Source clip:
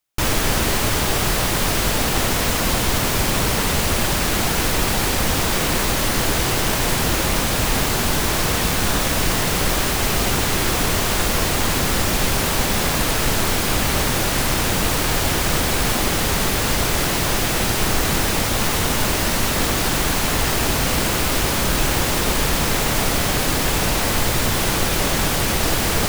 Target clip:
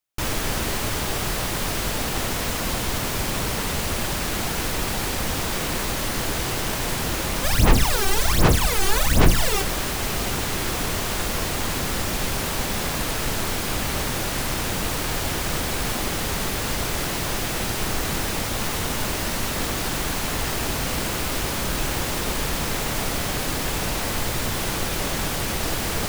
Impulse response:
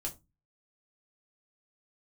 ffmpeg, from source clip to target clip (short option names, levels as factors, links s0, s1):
-filter_complex "[0:a]asplit=3[s0][s1][s2];[s0]afade=t=out:st=7.43:d=0.02[s3];[s1]aphaser=in_gain=1:out_gain=1:delay=2.6:decay=0.79:speed=1.3:type=sinusoidal,afade=t=in:st=7.43:d=0.02,afade=t=out:st=9.61:d=0.02[s4];[s2]afade=t=in:st=9.61:d=0.02[s5];[s3][s4][s5]amix=inputs=3:normalize=0,volume=0.501"